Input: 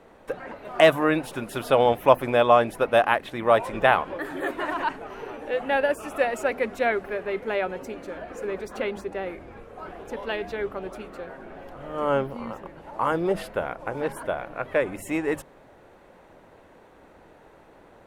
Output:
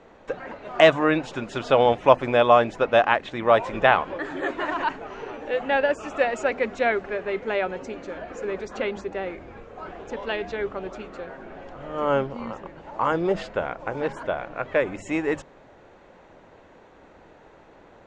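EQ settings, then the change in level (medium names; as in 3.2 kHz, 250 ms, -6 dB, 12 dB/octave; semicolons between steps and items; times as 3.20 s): elliptic low-pass 7.1 kHz, stop band 60 dB; +2.0 dB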